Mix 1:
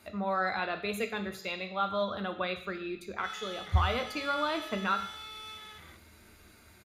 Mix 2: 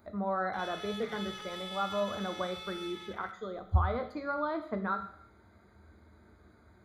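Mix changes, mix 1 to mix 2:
speech: add running mean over 16 samples; background: entry -2.65 s

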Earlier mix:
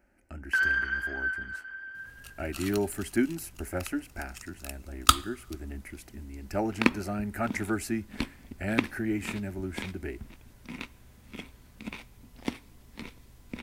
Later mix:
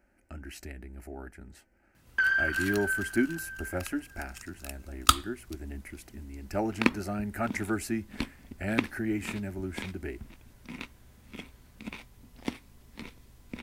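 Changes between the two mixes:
first sound: entry +1.65 s; reverb: off

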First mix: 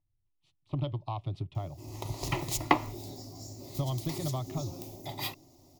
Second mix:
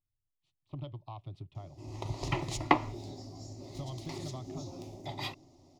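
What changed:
speech -9.0 dB; background: add air absorption 87 m

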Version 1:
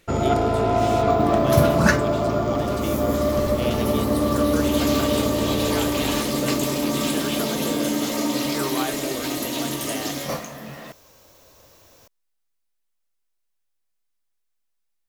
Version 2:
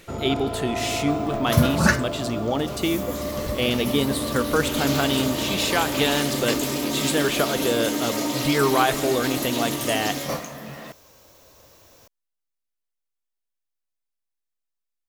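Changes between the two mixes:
speech +9.5 dB; first sound -8.5 dB

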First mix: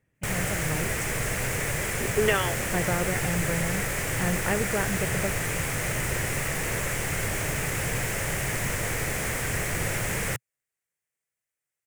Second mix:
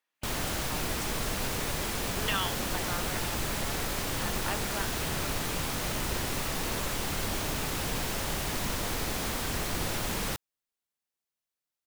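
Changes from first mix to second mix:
speech: add HPF 1000 Hz 12 dB/oct; master: add ten-band EQ 125 Hz -10 dB, 250 Hz +5 dB, 500 Hz -6 dB, 1000 Hz +4 dB, 2000 Hz -12 dB, 4000 Hz +10 dB, 8000 Hz -8 dB

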